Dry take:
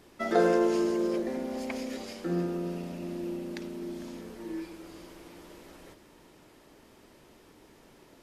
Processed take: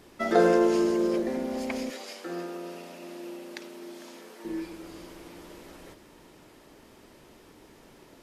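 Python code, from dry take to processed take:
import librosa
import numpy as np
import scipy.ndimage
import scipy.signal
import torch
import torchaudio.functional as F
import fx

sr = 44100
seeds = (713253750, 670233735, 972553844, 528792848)

y = fx.bessel_highpass(x, sr, hz=590.0, order=2, at=(1.9, 4.45))
y = F.gain(torch.from_numpy(y), 3.0).numpy()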